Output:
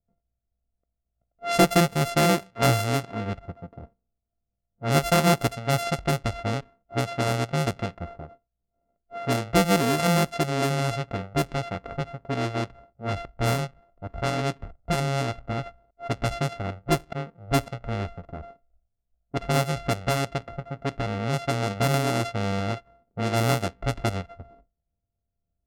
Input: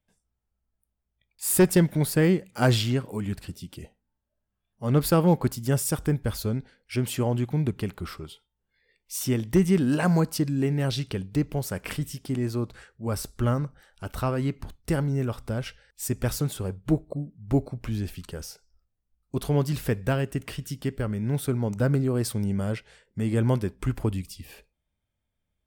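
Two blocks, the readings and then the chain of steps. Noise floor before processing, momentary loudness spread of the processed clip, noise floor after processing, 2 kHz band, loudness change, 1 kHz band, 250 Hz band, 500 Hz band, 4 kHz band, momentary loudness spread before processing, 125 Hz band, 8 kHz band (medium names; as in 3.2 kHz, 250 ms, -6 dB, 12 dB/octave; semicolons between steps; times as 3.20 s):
-81 dBFS, 15 LU, -82 dBFS, +6.0 dB, +0.5 dB, +8.5 dB, -2.5 dB, +1.5 dB, +5.0 dB, 14 LU, -1.5 dB, -1.0 dB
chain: sorted samples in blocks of 64 samples; level-controlled noise filter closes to 530 Hz, open at -19.5 dBFS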